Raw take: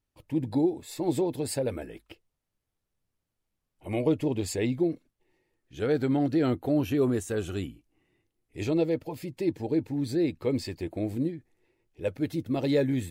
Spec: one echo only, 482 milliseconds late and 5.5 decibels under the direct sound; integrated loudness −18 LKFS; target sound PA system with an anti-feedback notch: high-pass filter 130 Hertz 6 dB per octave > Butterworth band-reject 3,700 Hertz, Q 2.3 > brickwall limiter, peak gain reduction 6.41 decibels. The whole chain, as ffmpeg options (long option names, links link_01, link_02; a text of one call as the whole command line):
ffmpeg -i in.wav -af "highpass=frequency=130:poles=1,asuperstop=centerf=3700:order=8:qfactor=2.3,aecho=1:1:482:0.531,volume=13dB,alimiter=limit=-7.5dB:level=0:latency=1" out.wav